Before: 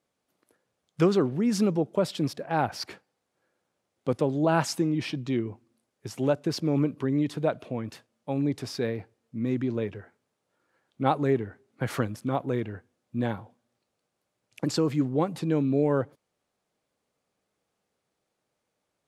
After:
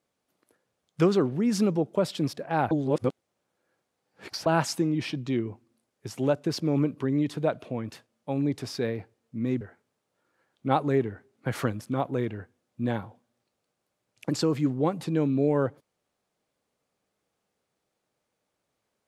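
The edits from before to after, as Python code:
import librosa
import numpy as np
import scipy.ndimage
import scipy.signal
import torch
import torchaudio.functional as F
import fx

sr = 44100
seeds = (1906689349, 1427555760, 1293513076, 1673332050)

y = fx.edit(x, sr, fx.reverse_span(start_s=2.71, length_s=1.75),
    fx.cut(start_s=9.61, length_s=0.35), tone=tone)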